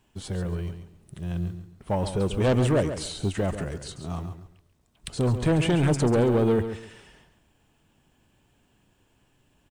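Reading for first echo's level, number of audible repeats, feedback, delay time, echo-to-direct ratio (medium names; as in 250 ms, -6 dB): -10.0 dB, 3, 25%, 138 ms, -9.5 dB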